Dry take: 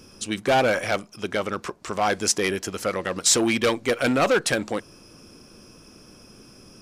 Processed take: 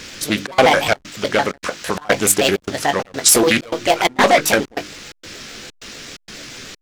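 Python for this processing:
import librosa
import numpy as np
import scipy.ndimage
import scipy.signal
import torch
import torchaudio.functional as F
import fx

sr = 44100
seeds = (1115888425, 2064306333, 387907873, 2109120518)

p1 = fx.pitch_trill(x, sr, semitones=6.0, every_ms=73)
p2 = fx.dmg_noise_band(p1, sr, seeds[0], low_hz=1300.0, high_hz=6800.0, level_db=-45.0)
p3 = fx.rider(p2, sr, range_db=3, speed_s=2.0)
p4 = p2 + F.gain(torch.from_numpy(p3), 0.0).numpy()
p5 = fx.hum_notches(p4, sr, base_hz=50, count=7)
p6 = fx.doubler(p5, sr, ms=20.0, db=-10)
p7 = fx.step_gate(p6, sr, bpm=129, pattern='xxxx.xxx.', floor_db=-24.0, edge_ms=4.5)
p8 = fx.backlash(p7, sr, play_db=-39.5)
p9 = fx.doppler_dist(p8, sr, depth_ms=0.24)
y = F.gain(torch.from_numpy(p9), 2.5).numpy()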